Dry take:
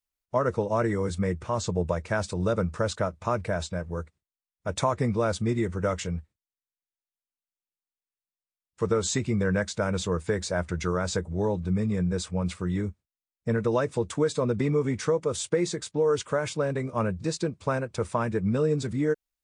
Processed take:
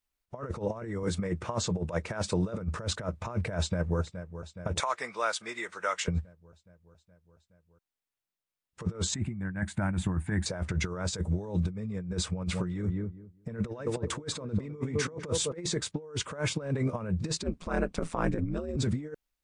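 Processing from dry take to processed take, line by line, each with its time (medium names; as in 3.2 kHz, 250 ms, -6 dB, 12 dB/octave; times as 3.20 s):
1.03–2.59 s: high-pass 190 Hz 6 dB/octave
3.58–4.00 s: echo throw 420 ms, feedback 70%, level -14.5 dB
4.80–6.08 s: high-pass 1.1 kHz
9.14–10.46 s: FFT filter 320 Hz 0 dB, 470 Hz -21 dB, 750 Hz 0 dB, 1.2 kHz -8 dB, 1.7 kHz 0 dB, 5.5 kHz -19 dB, 9.4 kHz 0 dB
11.07–11.71 s: treble shelf 4 kHz +7.5 dB
12.33–15.57 s: filtered feedback delay 203 ms, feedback 18%, low-pass 1.2 kHz, level -11 dB
17.43–18.77 s: ring modulator 84 Hz
whole clip: compressor with a negative ratio -31 dBFS, ratio -0.5; tone controls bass +2 dB, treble -4 dB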